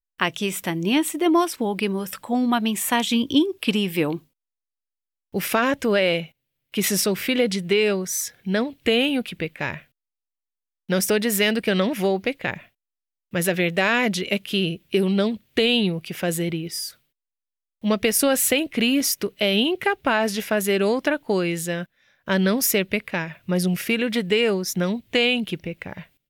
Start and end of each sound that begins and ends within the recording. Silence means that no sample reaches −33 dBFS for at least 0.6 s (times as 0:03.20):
0:05.34–0:09.78
0:10.89–0:12.58
0:13.33–0:16.90